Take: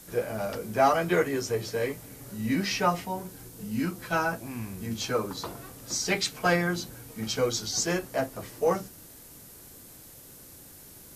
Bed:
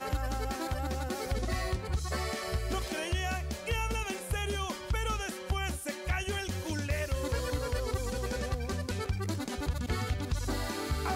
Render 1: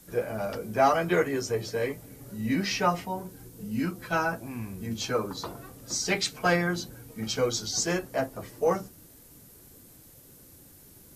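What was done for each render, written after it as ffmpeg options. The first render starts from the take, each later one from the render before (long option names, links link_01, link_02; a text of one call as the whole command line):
ffmpeg -i in.wav -af "afftdn=noise_reduction=6:noise_floor=-49" out.wav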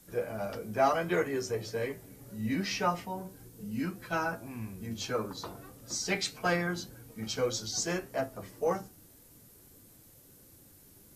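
ffmpeg -i in.wav -af "flanger=delay=8.9:depth=1.7:regen=82:speed=1.7:shape=sinusoidal" out.wav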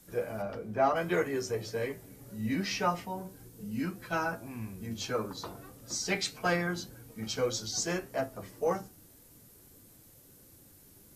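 ffmpeg -i in.wav -filter_complex "[0:a]asplit=3[link_01][link_02][link_03];[link_01]afade=type=out:start_time=0.41:duration=0.02[link_04];[link_02]lowpass=frequency=1900:poles=1,afade=type=in:start_time=0.41:duration=0.02,afade=type=out:start_time=0.95:duration=0.02[link_05];[link_03]afade=type=in:start_time=0.95:duration=0.02[link_06];[link_04][link_05][link_06]amix=inputs=3:normalize=0" out.wav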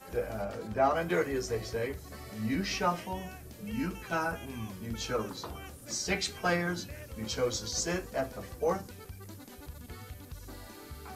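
ffmpeg -i in.wav -i bed.wav -filter_complex "[1:a]volume=-13.5dB[link_01];[0:a][link_01]amix=inputs=2:normalize=0" out.wav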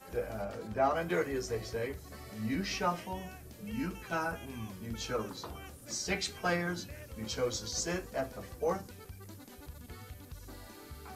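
ffmpeg -i in.wav -af "volume=-2.5dB" out.wav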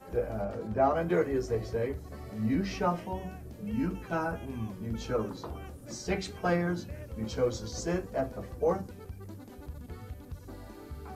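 ffmpeg -i in.wav -af "tiltshelf=frequency=1300:gain=6.5,bandreject=frequency=47.42:width_type=h:width=4,bandreject=frequency=94.84:width_type=h:width=4,bandreject=frequency=142.26:width_type=h:width=4,bandreject=frequency=189.68:width_type=h:width=4,bandreject=frequency=237.1:width_type=h:width=4,bandreject=frequency=284.52:width_type=h:width=4" out.wav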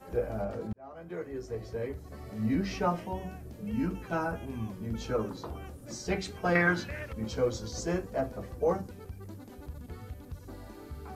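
ffmpeg -i in.wav -filter_complex "[0:a]asettb=1/sr,asplit=3[link_01][link_02][link_03];[link_01]atrim=end=6.554[link_04];[link_02]atrim=start=6.55:end=7.13,asetpts=PTS-STARTPTS,afade=type=in:duration=0.004:curve=qsin,afade=type=out:start_time=0.576:duration=0.004:curve=qsin,equalizer=frequency=1900:width=0.56:gain=15[link_05];[link_03]atrim=start=7.126[link_06];[link_04][link_05]acrossfade=duration=0.004:curve1=hsin:curve2=qsin[link_07];[link_07][link_06]acrossfade=duration=0.004:curve1=qsin:curve2=hsin,asplit=2[link_08][link_09];[link_08]atrim=end=0.73,asetpts=PTS-STARTPTS,afade=type=out:start_time=0.726:duration=0.004:curve=hsin[link_10];[link_09]atrim=start=0.73,asetpts=PTS-STARTPTS,afade=type=in:duration=1.68[link_11];[link_10][link_11]concat=n=2:v=0:a=1" out.wav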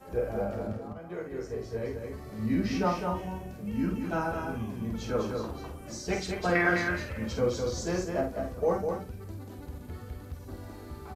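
ffmpeg -i in.wav -filter_complex "[0:a]asplit=2[link_01][link_02];[link_02]adelay=49,volume=-6dB[link_03];[link_01][link_03]amix=inputs=2:normalize=0,aecho=1:1:204:0.562" out.wav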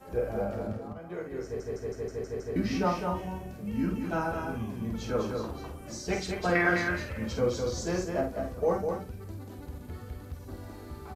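ffmpeg -i in.wav -filter_complex "[0:a]asplit=8[link_01][link_02][link_03][link_04][link_05][link_06][link_07][link_08];[link_01]atrim=end=1.602[link_09];[link_02]atrim=start=1.438:end=1.602[link_10];[link_03]atrim=start=1.438:end=1.602[link_11];[link_04]atrim=start=1.438:end=1.602[link_12];[link_05]atrim=start=1.438:end=1.602[link_13];[link_06]atrim=start=1.438:end=1.602[link_14];[link_07]atrim=start=1.438:end=1.602[link_15];[link_08]atrim=start=2.558[link_16];[link_09][link_10]acrossfade=duration=0.004:curve1=hsin:curve2=hsin[link_17];[link_17][link_11]acrossfade=duration=0.004:curve1=hsin:curve2=hsin[link_18];[link_18][link_12]acrossfade=duration=0.004:curve1=hsin:curve2=hsin[link_19];[link_19][link_13]acrossfade=duration=0.004:curve1=hsin:curve2=hsin[link_20];[link_20][link_14]acrossfade=duration=0.004:curve1=hsin:curve2=hsin[link_21];[link_21][link_15]acrossfade=duration=0.004:curve1=hsin:curve2=hsin[link_22];[link_22][link_16]acrossfade=duration=0.004:curve1=hsin:curve2=hsin" out.wav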